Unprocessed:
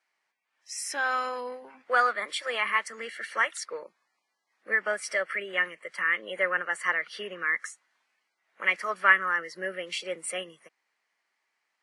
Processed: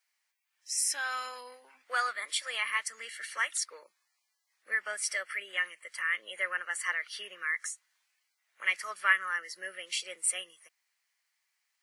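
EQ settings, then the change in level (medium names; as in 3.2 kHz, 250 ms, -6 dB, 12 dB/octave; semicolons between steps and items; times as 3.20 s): tilt EQ +5 dB/octave; peaking EQ 150 Hz -4.5 dB 0.23 oct; -9.0 dB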